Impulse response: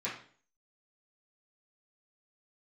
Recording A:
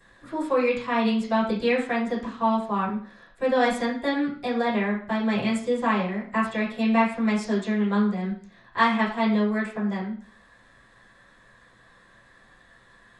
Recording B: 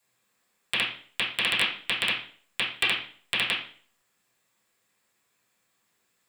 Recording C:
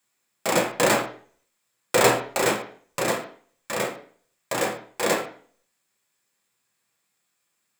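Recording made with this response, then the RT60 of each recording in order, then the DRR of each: B; 0.45, 0.45, 0.45 s; -17.5, -10.5, -2.0 dB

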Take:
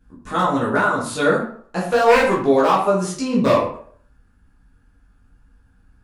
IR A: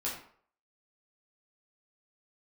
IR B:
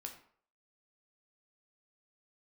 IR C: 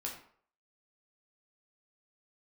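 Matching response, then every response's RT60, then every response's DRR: A; 0.55, 0.55, 0.55 s; -6.5, 2.5, -2.0 dB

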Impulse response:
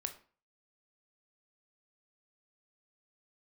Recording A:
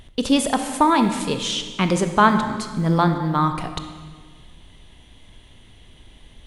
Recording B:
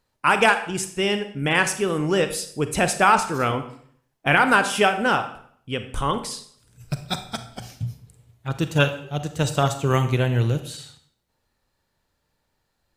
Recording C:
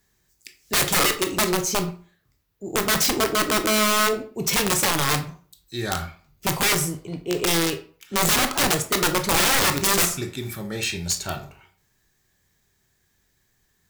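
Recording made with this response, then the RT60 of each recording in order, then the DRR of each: C; 1.6, 0.60, 0.40 s; 7.5, 9.0, 6.5 dB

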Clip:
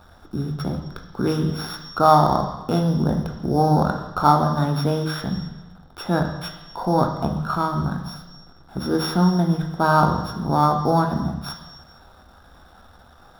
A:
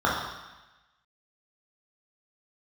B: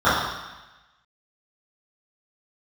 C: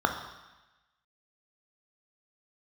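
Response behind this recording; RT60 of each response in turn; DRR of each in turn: C; 1.1, 1.1, 1.1 s; -5.5, -15.5, 4.0 dB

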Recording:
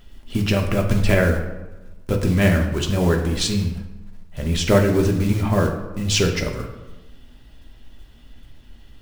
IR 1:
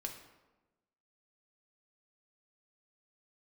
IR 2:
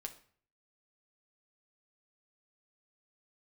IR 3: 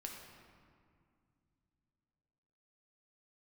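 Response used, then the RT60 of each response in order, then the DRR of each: 1; 1.1, 0.50, 2.3 s; 2.0, 3.5, 0.0 dB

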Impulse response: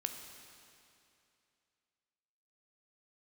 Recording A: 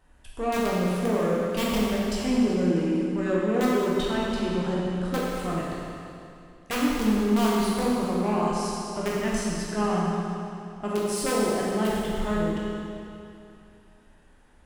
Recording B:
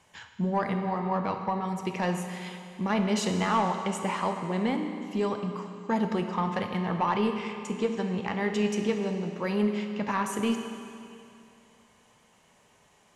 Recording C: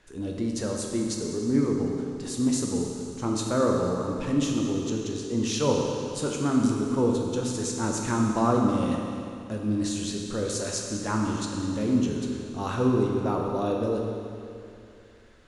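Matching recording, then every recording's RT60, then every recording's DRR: B; 2.6, 2.6, 2.6 s; -6.0, 5.0, -0.5 dB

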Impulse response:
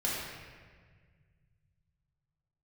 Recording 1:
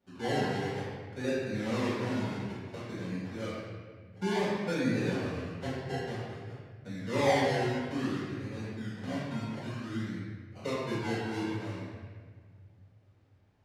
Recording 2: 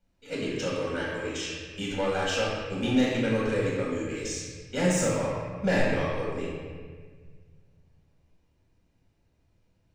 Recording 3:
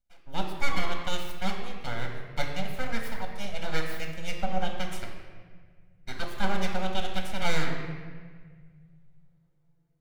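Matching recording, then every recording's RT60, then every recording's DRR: 2; 1.6, 1.6, 1.7 s; -12.0, -7.0, 2.0 dB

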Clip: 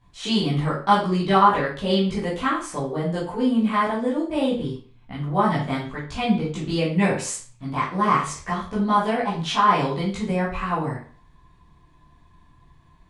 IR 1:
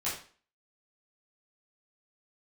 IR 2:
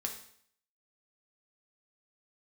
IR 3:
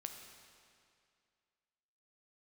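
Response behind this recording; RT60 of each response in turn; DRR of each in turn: 1; 0.40, 0.60, 2.3 s; -10.5, 2.0, 4.0 dB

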